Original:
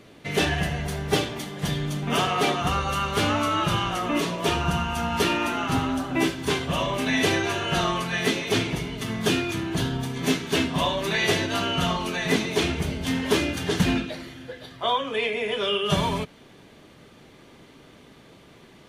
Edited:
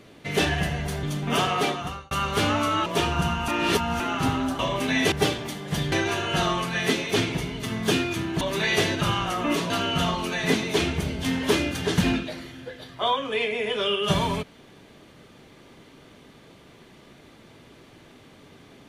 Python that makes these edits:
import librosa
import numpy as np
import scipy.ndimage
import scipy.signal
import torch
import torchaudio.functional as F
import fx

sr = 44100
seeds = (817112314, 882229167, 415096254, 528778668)

y = fx.edit(x, sr, fx.move(start_s=1.03, length_s=0.8, to_s=7.3),
    fx.fade_out_span(start_s=2.34, length_s=0.57),
    fx.move(start_s=3.66, length_s=0.69, to_s=11.52),
    fx.reverse_span(start_s=4.97, length_s=0.52),
    fx.cut(start_s=6.08, length_s=0.69),
    fx.cut(start_s=9.79, length_s=1.13), tone=tone)